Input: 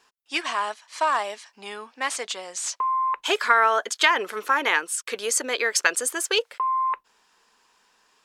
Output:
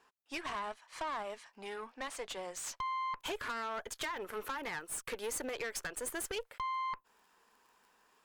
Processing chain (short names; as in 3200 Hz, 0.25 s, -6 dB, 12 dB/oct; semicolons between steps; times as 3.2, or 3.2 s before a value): bell 5400 Hz -10 dB 2.2 oct; compressor 4:1, threshold -32 dBFS, peak gain reduction 14.5 dB; crackle 17/s -53 dBFS; high shelf 11000 Hz -3 dB, from 2.92 s +8.5 dB; tube stage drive 33 dB, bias 0.6